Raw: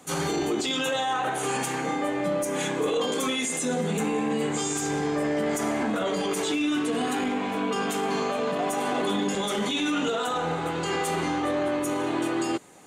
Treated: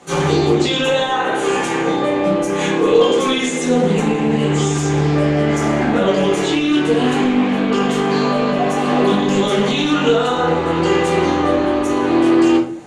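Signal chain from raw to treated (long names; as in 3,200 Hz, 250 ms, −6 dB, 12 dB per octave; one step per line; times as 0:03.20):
high-frequency loss of the air 66 metres
rectangular room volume 35 cubic metres, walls mixed, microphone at 0.88 metres
highs frequency-modulated by the lows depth 0.13 ms
level +5.5 dB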